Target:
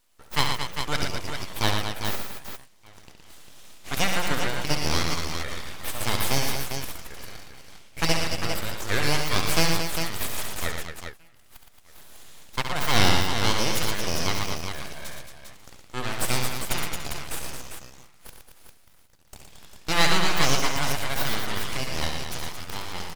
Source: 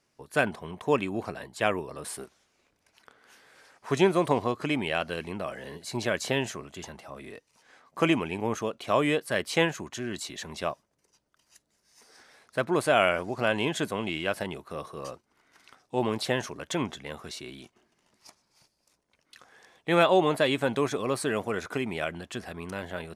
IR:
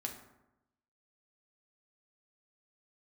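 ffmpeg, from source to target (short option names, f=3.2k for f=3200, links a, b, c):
-filter_complex "[0:a]tiltshelf=f=970:g=-9.5,asplit=2[a][b];[b]adelay=1224,volume=-24dB,highshelf=f=4k:g=-27.6[c];[a][c]amix=inputs=2:normalize=0,aeval=exprs='abs(val(0))':c=same,asplit=2[d][e];[e]aecho=0:1:68|116|223|400:0.447|0.501|0.398|0.447[f];[d][f]amix=inputs=2:normalize=0,volume=1.5dB"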